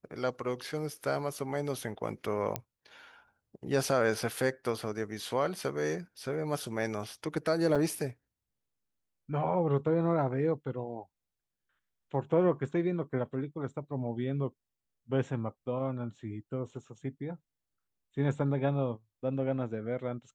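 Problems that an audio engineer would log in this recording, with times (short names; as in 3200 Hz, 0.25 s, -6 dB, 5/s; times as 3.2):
2.56 pop -15 dBFS
7.75–7.76 gap 5.9 ms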